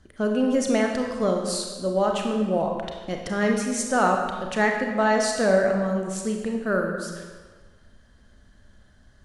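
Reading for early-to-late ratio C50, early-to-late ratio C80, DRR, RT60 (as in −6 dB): 3.5 dB, 5.5 dB, 1.5 dB, 1.5 s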